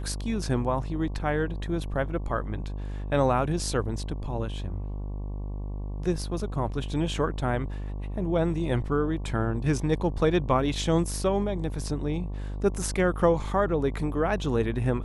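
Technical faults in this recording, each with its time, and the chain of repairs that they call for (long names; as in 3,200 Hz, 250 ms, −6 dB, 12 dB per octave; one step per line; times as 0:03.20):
mains buzz 50 Hz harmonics 23 −33 dBFS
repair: hum removal 50 Hz, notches 23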